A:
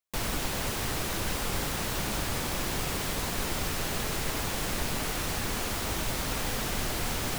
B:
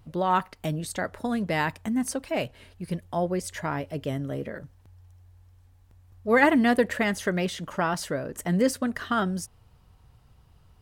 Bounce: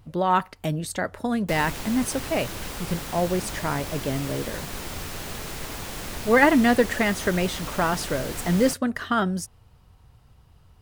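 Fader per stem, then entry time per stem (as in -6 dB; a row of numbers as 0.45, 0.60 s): -3.0, +2.5 dB; 1.35, 0.00 s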